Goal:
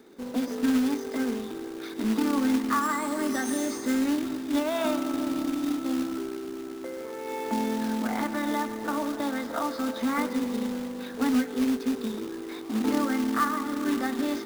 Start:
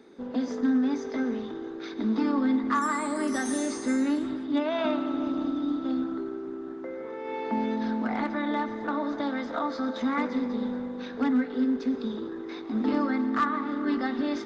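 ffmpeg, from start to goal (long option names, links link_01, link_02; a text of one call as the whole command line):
ffmpeg -i in.wav -af "acrusher=bits=3:mode=log:mix=0:aa=0.000001" out.wav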